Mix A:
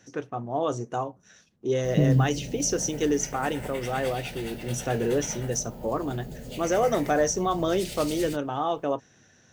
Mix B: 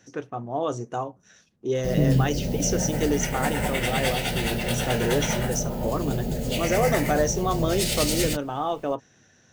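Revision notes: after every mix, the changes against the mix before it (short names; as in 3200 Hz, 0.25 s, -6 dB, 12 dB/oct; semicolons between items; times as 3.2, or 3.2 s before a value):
background +12.0 dB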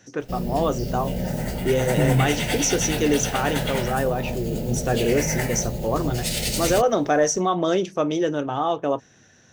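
first voice +4.0 dB; background: entry -1.55 s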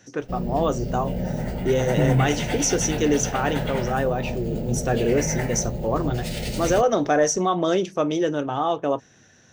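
background: add bell 13000 Hz -13 dB 2.6 oct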